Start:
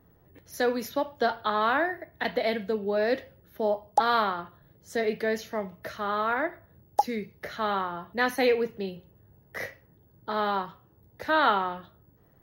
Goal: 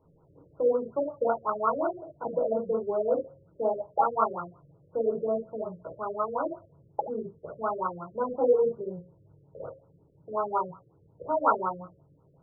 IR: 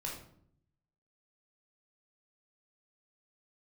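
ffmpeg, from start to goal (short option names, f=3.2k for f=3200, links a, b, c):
-filter_complex "[0:a]lowshelf=f=110:g=-11[a];[1:a]atrim=start_sample=2205,atrim=end_sample=3528[b];[a][b]afir=irnorm=-1:irlink=0,afftfilt=real='re*lt(b*sr/1024,560*pow(1500/560,0.5+0.5*sin(2*PI*5.5*pts/sr)))':imag='im*lt(b*sr/1024,560*pow(1500/560,0.5+0.5*sin(2*PI*5.5*pts/sr)))':win_size=1024:overlap=0.75,volume=1.5dB"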